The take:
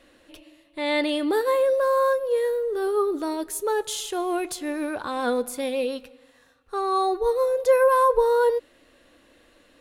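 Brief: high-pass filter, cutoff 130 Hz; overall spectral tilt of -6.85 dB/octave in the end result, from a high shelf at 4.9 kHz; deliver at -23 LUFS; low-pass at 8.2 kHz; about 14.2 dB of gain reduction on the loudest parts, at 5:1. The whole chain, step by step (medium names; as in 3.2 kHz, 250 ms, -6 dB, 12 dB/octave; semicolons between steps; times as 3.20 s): high-pass 130 Hz; low-pass 8.2 kHz; treble shelf 4.9 kHz -8 dB; compression 5:1, threshold -31 dBFS; trim +10.5 dB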